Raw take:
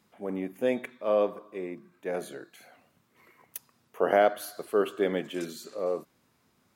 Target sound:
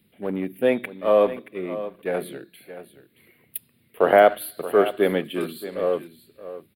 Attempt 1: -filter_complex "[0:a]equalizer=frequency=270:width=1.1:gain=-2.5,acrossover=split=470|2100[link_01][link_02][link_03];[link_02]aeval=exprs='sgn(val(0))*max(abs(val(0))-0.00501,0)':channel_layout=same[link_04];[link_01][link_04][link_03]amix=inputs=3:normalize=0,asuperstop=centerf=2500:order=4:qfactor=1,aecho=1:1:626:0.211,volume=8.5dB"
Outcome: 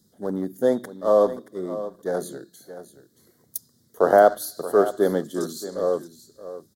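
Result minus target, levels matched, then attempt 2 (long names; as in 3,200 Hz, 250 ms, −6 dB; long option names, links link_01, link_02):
2,000 Hz band −4.5 dB
-filter_complex "[0:a]equalizer=frequency=270:width=1.1:gain=-2.5,acrossover=split=470|2100[link_01][link_02][link_03];[link_02]aeval=exprs='sgn(val(0))*max(abs(val(0))-0.00501,0)':channel_layout=same[link_04];[link_01][link_04][link_03]amix=inputs=3:normalize=0,asuperstop=centerf=6200:order=4:qfactor=1,aecho=1:1:626:0.211,volume=8.5dB"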